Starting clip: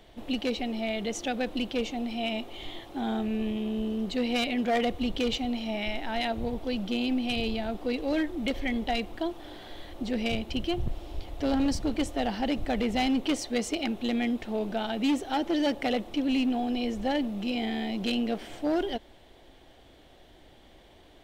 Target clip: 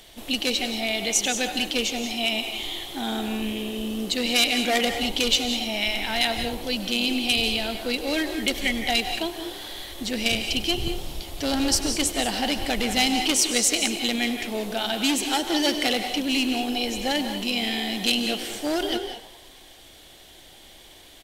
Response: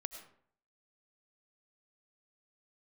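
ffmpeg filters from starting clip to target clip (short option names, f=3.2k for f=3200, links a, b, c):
-filter_complex "[0:a]asplit=7[a][b][c][d][e][f][g];[b]adelay=99,afreqshift=59,volume=-17dB[h];[c]adelay=198,afreqshift=118,volume=-21.2dB[i];[d]adelay=297,afreqshift=177,volume=-25.3dB[j];[e]adelay=396,afreqshift=236,volume=-29.5dB[k];[f]adelay=495,afreqshift=295,volume=-33.6dB[l];[g]adelay=594,afreqshift=354,volume=-37.8dB[m];[a][h][i][j][k][l][m]amix=inputs=7:normalize=0[n];[1:a]atrim=start_sample=2205,afade=t=out:st=0.18:d=0.01,atrim=end_sample=8379,asetrate=25578,aresample=44100[o];[n][o]afir=irnorm=-1:irlink=0,crystalizer=i=7.5:c=0"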